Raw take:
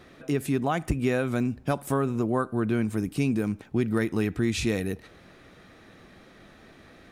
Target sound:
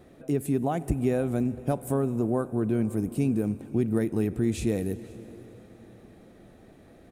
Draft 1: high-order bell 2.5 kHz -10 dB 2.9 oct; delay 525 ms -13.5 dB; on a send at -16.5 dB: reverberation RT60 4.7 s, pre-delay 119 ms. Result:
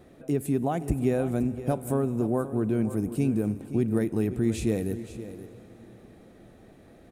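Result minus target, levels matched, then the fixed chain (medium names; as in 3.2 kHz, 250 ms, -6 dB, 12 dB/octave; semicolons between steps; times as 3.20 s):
echo-to-direct +4 dB
high-order bell 2.5 kHz -10 dB 2.9 oct; delay 525 ms -25 dB; on a send at -16.5 dB: reverberation RT60 4.7 s, pre-delay 119 ms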